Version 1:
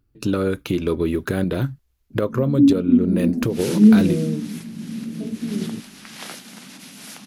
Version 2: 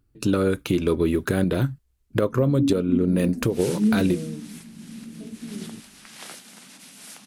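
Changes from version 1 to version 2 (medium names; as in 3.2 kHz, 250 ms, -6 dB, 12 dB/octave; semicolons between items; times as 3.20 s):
first sound -9.5 dB; second sound -5.5 dB; master: add peaking EQ 8.5 kHz +6.5 dB 0.47 oct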